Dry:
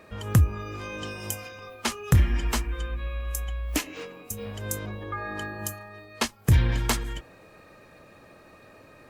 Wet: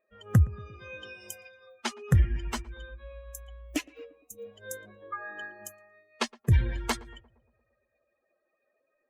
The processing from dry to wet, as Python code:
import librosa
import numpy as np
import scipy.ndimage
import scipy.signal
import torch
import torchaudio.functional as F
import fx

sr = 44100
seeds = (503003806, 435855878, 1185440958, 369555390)

y = fx.bin_expand(x, sr, power=2.0)
y = fx.high_shelf(y, sr, hz=8600.0, db=-10.5)
y = fx.echo_filtered(y, sr, ms=116, feedback_pct=58, hz=1200.0, wet_db=-21.0)